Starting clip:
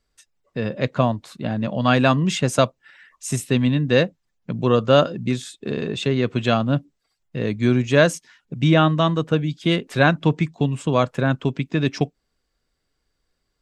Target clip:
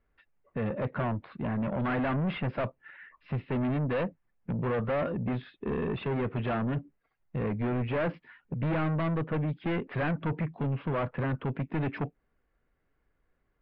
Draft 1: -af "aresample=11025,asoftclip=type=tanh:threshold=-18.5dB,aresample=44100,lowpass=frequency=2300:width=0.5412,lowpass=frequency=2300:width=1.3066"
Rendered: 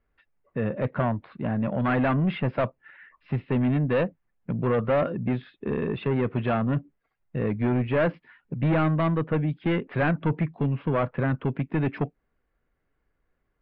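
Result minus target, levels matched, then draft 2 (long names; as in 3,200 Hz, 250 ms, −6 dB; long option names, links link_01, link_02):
soft clipping: distortion −4 dB
-af "aresample=11025,asoftclip=type=tanh:threshold=-26.5dB,aresample=44100,lowpass=frequency=2300:width=0.5412,lowpass=frequency=2300:width=1.3066"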